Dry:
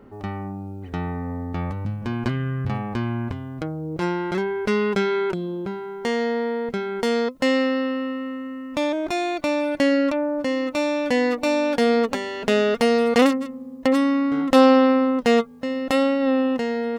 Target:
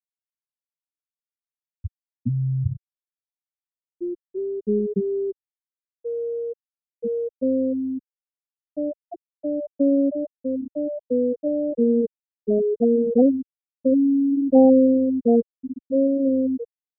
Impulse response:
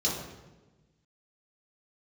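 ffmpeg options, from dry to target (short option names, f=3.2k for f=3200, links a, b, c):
-af "lowpass=f=2.2k:p=1,afftfilt=real='re*gte(hypot(re,im),0.631)':imag='im*gte(hypot(re,im),0.631)':win_size=1024:overlap=0.75,lowshelf=f=120:g=11.5"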